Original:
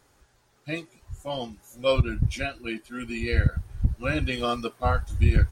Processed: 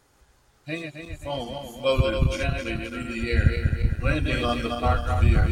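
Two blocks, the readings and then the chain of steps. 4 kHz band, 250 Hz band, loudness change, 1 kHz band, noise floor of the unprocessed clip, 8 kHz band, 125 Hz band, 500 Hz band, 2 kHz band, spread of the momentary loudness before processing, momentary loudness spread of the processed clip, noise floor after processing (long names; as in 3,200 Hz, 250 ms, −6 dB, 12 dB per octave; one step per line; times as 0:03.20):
+2.0 dB, +2.5 dB, +2.0 dB, +2.0 dB, −65 dBFS, +2.0 dB, +2.0 dB, +2.0 dB, +2.0 dB, 11 LU, 11 LU, −62 dBFS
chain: feedback delay that plays each chunk backwards 132 ms, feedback 67%, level −4.5 dB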